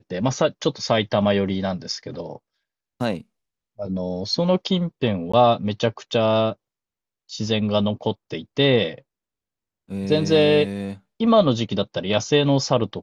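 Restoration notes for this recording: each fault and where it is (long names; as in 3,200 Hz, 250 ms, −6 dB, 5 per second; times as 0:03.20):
0:05.32–0:05.33: drop-out 15 ms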